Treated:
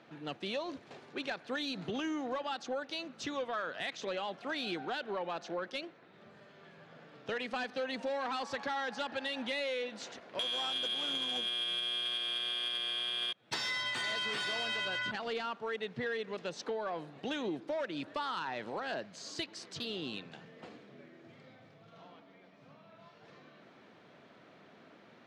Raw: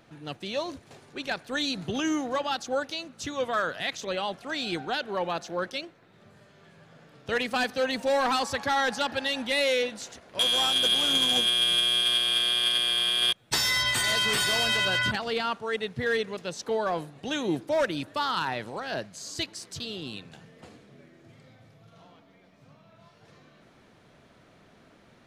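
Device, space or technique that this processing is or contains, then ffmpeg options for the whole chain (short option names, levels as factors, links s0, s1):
AM radio: -af "highpass=190,lowpass=4200,acompressor=threshold=0.0224:ratio=6,asoftclip=type=tanh:threshold=0.0501"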